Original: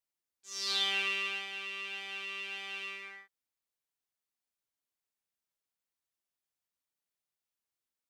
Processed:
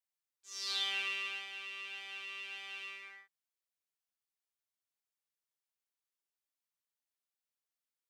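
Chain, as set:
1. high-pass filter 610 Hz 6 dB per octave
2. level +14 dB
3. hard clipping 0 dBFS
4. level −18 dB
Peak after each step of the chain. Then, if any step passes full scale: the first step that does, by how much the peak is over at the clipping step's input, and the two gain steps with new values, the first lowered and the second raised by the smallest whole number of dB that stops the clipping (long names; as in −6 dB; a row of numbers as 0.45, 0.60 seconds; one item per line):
−19.0, −5.0, −5.0, −23.0 dBFS
no step passes full scale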